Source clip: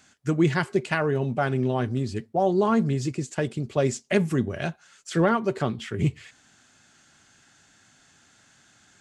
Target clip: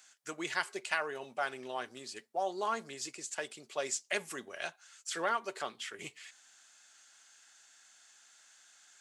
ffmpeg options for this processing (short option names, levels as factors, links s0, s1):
-af "highpass=720,highshelf=f=4000:g=8.5,volume=0.473"